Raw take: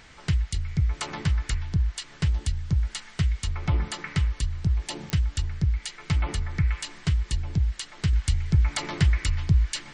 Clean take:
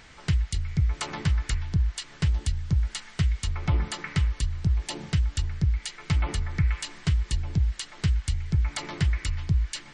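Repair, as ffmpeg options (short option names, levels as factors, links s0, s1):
-af "adeclick=t=4,asetnsamples=n=441:p=0,asendcmd='8.13 volume volume -3.5dB',volume=1"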